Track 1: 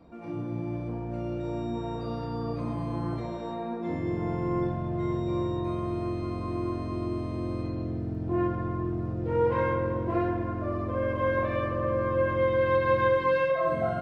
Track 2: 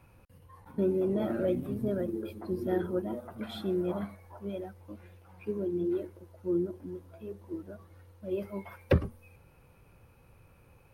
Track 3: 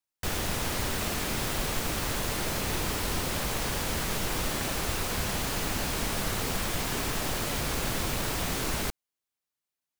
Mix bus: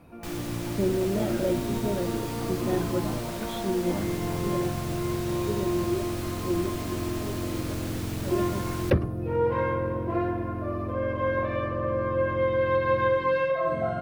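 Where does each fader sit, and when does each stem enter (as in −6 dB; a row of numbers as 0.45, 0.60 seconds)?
0.0, +2.0, −8.5 decibels; 0.00, 0.00, 0.00 seconds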